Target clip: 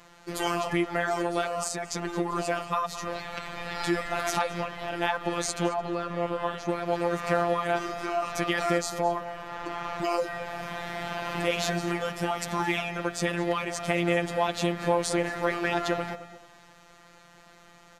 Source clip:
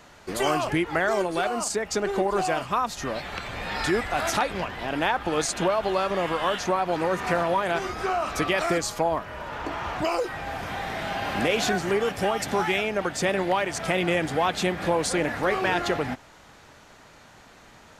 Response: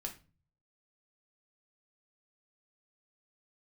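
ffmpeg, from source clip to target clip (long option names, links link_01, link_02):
-filter_complex "[0:a]asettb=1/sr,asplit=3[link_01][link_02][link_03];[link_01]atrim=end=5.694[link_04];[link_02]atrim=start=5.69:end=6.69,asetpts=PTS-STARTPTS,afade=type=in:duration=0.004:curve=qsin,afade=type=out:start_time=0.996:duration=0.004:curve=qsin,highshelf=frequency=2000:gain=-10[link_05];[link_03]atrim=start=6.686[link_06];[link_04][link_05]acrossfade=duration=0.004:curve1=hsin:curve2=qsin[link_07];[link_07][link_06]acrossfade=duration=0.004:curve1=qsin:curve2=hsin,afftfilt=real='hypot(re,im)*cos(PI*b)':imag='0':win_size=1024:overlap=0.75,asplit=2[link_08][link_09];[link_09]adelay=219,lowpass=frequency=3200:poles=1,volume=-13dB,asplit=2[link_10][link_11];[link_11]adelay=219,lowpass=frequency=3200:poles=1,volume=0.3,asplit=2[link_12][link_13];[link_13]adelay=219,lowpass=frequency=3200:poles=1,volume=0.3[link_14];[link_08][link_10][link_12][link_14]amix=inputs=4:normalize=0"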